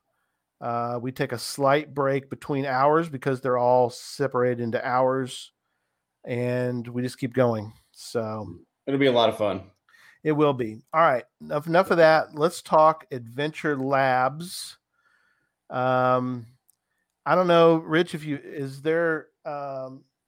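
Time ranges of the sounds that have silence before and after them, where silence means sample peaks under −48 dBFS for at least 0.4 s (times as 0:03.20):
0:00.61–0:05.48
0:06.24–0:14.75
0:15.70–0:16.70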